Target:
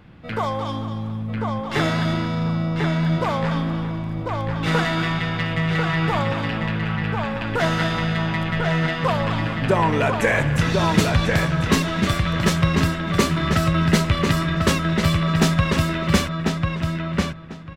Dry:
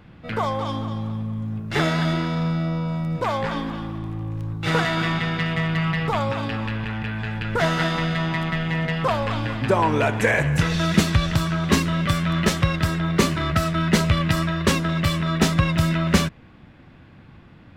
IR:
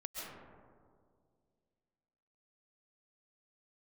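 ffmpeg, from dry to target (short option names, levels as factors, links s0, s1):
-filter_complex "[0:a]asplit=2[s0][s1];[s1]adelay=1045,lowpass=f=4100:p=1,volume=0.668,asplit=2[s2][s3];[s3]adelay=1045,lowpass=f=4100:p=1,volume=0.19,asplit=2[s4][s5];[s5]adelay=1045,lowpass=f=4100:p=1,volume=0.19[s6];[s0][s2][s4][s6]amix=inputs=4:normalize=0"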